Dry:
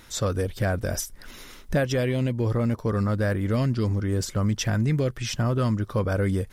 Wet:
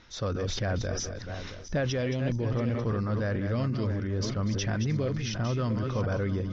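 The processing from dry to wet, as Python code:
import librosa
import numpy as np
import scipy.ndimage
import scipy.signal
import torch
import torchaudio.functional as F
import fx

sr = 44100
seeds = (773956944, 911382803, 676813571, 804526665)

y = fx.reverse_delay_fb(x, sr, ms=337, feedback_pct=45, wet_db=-7.5)
y = scipy.signal.sosfilt(scipy.signal.butter(12, 6200.0, 'lowpass', fs=sr, output='sos'), y)
y = fx.sustainer(y, sr, db_per_s=31.0)
y = y * librosa.db_to_amplitude(-6.0)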